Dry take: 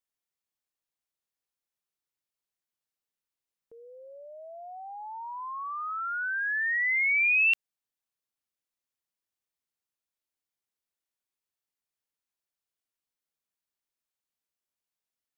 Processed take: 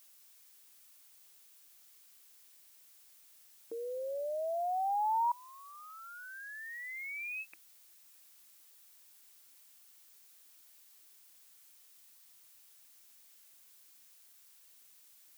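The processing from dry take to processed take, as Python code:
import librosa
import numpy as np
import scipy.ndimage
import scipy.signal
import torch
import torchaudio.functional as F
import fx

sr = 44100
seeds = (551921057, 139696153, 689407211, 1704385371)

y = fx.brickwall_bandpass(x, sr, low_hz=170.0, high_hz=2600.0)
y = fx.peak_eq(y, sr, hz=320.0, db=15.0, octaves=0.22)
y = fx.gate_flip(y, sr, shuts_db=-35.0, range_db=-26)
y = fx.dmg_noise_colour(y, sr, seeds[0], colour='blue', level_db=-70.0)
y = y * librosa.db_to_amplitude(9.0)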